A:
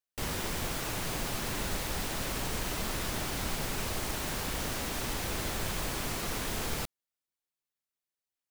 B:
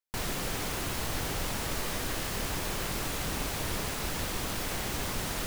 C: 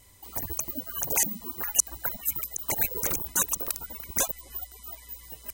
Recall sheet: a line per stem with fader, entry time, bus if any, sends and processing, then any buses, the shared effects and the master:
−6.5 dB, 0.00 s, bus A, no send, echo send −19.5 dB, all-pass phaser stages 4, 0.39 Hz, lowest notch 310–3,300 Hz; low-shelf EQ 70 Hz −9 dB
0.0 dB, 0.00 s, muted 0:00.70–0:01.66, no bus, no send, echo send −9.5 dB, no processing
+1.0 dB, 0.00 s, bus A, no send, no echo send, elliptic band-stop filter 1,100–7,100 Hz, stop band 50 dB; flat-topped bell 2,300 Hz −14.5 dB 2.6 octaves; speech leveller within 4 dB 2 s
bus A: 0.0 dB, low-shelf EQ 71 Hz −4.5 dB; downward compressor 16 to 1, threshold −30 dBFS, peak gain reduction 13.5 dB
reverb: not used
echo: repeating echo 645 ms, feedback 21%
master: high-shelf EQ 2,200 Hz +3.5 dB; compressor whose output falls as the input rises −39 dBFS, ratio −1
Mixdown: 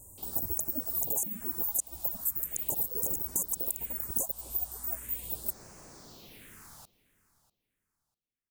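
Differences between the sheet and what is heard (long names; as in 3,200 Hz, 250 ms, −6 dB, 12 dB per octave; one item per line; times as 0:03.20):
stem A −6.5 dB → −15.5 dB
stem B: muted
master: missing compressor whose output falls as the input rises −39 dBFS, ratio −1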